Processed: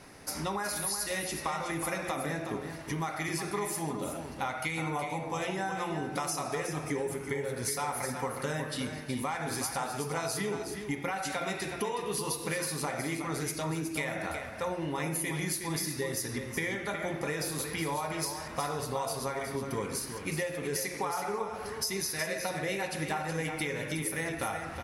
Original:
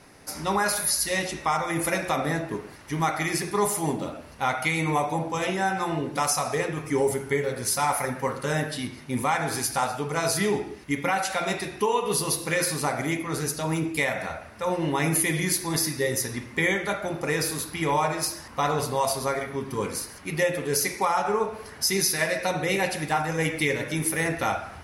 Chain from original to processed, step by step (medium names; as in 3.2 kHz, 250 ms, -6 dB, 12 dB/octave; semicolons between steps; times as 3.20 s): compression, threshold -31 dBFS, peak gain reduction 12 dB; delay 368 ms -8 dB